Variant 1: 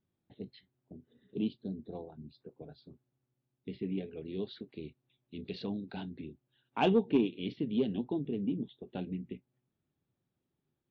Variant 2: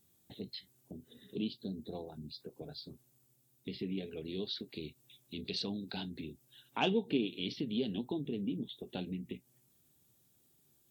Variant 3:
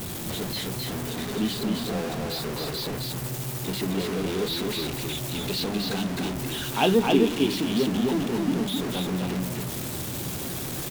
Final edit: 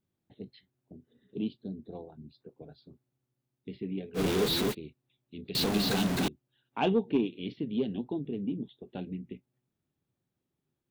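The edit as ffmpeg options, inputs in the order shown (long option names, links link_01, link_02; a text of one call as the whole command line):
ffmpeg -i take0.wav -i take1.wav -i take2.wav -filter_complex "[2:a]asplit=2[link_01][link_02];[0:a]asplit=3[link_03][link_04][link_05];[link_03]atrim=end=4.2[link_06];[link_01]atrim=start=4.14:end=4.75[link_07];[link_04]atrim=start=4.69:end=5.552[link_08];[link_02]atrim=start=5.548:end=6.282[link_09];[link_05]atrim=start=6.278[link_10];[link_06][link_07]acrossfade=duration=0.06:curve1=tri:curve2=tri[link_11];[link_11][link_08]acrossfade=duration=0.06:curve1=tri:curve2=tri[link_12];[link_12][link_09]acrossfade=duration=0.004:curve1=hsin:curve2=hsin[link_13];[link_13][link_10]acrossfade=duration=0.004:curve1=hsin:curve2=hsin" out.wav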